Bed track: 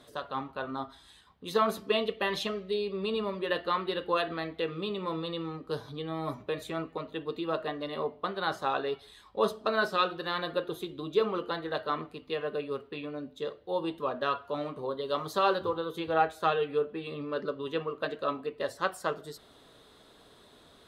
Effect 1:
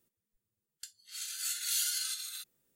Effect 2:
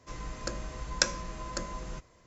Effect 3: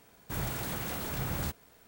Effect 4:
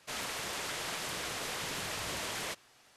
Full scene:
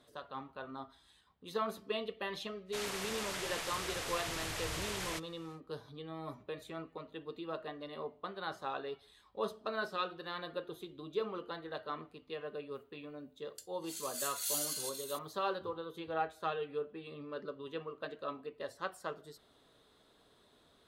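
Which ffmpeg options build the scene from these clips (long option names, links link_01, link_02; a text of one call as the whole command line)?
ffmpeg -i bed.wav -i cue0.wav -i cue1.wav -i cue2.wav -i cue3.wav -filter_complex "[0:a]volume=-9.5dB[link_01];[4:a]asubboost=boost=6:cutoff=110[link_02];[1:a]highshelf=frequency=6100:gain=8.5[link_03];[link_02]atrim=end=2.96,asetpts=PTS-STARTPTS,volume=-2.5dB,afade=type=in:duration=0.1,afade=type=out:start_time=2.86:duration=0.1,adelay=2650[link_04];[link_03]atrim=end=2.75,asetpts=PTS-STARTPTS,volume=-9.5dB,afade=type=in:duration=0.004:curve=hsin,afade=type=out:start_time=2.746:duration=0.004:curve=hsin,adelay=12750[link_05];[link_01][link_04][link_05]amix=inputs=3:normalize=0" out.wav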